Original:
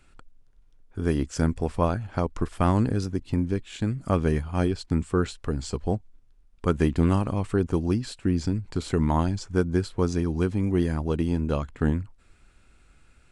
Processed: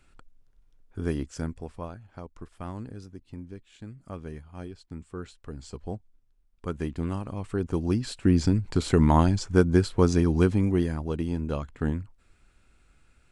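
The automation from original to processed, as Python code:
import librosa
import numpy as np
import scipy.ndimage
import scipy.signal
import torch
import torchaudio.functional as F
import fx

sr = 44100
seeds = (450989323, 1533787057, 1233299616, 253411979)

y = fx.gain(x, sr, db=fx.line((1.01, -3.0), (1.95, -15.5), (4.98, -15.5), (5.83, -9.0), (7.23, -9.0), (8.31, 3.5), (10.5, 3.5), (10.97, -4.0)))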